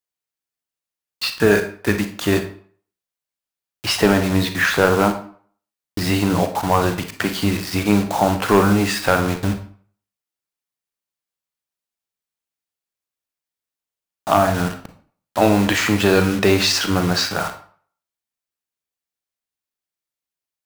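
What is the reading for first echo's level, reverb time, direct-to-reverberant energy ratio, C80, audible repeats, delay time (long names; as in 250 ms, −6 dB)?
no echo audible, 0.50 s, 7.0 dB, 14.5 dB, no echo audible, no echo audible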